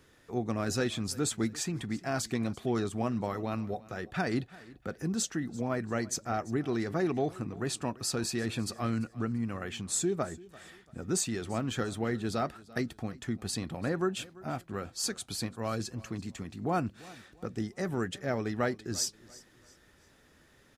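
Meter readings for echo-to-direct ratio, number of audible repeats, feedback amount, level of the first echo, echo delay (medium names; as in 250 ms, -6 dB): -20.5 dB, 2, 35%, -21.0 dB, 341 ms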